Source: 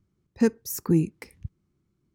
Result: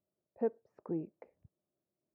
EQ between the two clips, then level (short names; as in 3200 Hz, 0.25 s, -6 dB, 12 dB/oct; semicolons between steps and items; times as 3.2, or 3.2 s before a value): band-pass 620 Hz, Q 7.5; air absorption 420 m; +7.0 dB